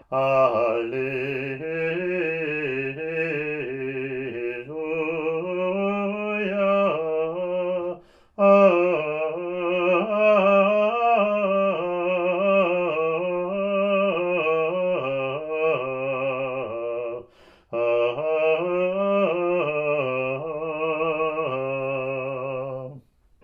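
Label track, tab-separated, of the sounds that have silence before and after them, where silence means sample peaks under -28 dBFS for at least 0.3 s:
8.390000	17.190000	sound
17.730000	22.860000	sound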